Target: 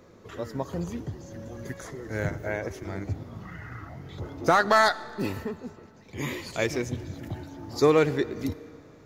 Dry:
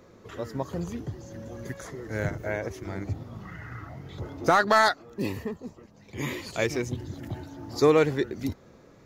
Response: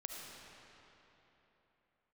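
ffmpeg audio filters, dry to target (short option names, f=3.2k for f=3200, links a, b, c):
-filter_complex "[0:a]asplit=2[a][b];[1:a]atrim=start_sample=2205,asetrate=66150,aresample=44100,adelay=12[c];[b][c]afir=irnorm=-1:irlink=0,volume=-10dB[d];[a][d]amix=inputs=2:normalize=0"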